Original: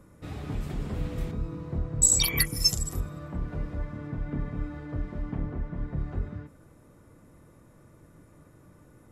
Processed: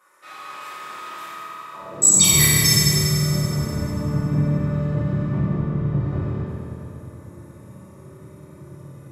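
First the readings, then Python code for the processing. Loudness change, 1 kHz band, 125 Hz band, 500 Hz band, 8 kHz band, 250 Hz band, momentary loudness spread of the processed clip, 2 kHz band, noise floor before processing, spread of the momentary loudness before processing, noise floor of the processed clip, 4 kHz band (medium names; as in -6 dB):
+11.0 dB, +12.5 dB, +12.0 dB, +10.0 dB, +9.5 dB, +11.5 dB, 22 LU, +10.5 dB, -56 dBFS, 15 LU, -44 dBFS, +9.0 dB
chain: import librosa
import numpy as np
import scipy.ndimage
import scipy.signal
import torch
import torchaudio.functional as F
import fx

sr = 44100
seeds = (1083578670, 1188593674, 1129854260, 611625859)

y = fx.rev_fdn(x, sr, rt60_s=3.4, lf_ratio=1.0, hf_ratio=0.75, size_ms=16.0, drr_db=-9.5)
y = fx.filter_sweep_highpass(y, sr, from_hz=1200.0, to_hz=120.0, start_s=1.73, end_s=2.34, q=1.7)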